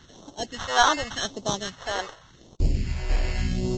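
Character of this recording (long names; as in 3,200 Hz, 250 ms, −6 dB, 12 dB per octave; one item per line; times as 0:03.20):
aliases and images of a low sample rate 2,400 Hz, jitter 0%
phaser sweep stages 2, 0.87 Hz, lowest notch 160–1,700 Hz
Ogg Vorbis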